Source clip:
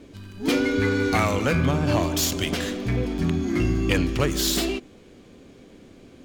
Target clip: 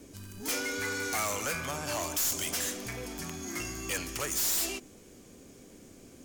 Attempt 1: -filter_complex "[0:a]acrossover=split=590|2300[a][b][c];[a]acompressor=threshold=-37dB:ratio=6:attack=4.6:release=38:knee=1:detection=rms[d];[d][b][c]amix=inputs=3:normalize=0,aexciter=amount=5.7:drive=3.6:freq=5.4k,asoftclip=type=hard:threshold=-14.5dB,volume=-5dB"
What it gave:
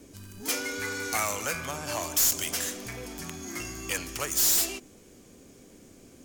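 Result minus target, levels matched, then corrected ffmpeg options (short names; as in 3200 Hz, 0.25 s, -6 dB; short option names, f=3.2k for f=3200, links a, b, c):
hard clip: distortion -5 dB
-filter_complex "[0:a]acrossover=split=590|2300[a][b][c];[a]acompressor=threshold=-37dB:ratio=6:attack=4.6:release=38:knee=1:detection=rms[d];[d][b][c]amix=inputs=3:normalize=0,aexciter=amount=5.7:drive=3.6:freq=5.4k,asoftclip=type=hard:threshold=-22.5dB,volume=-5dB"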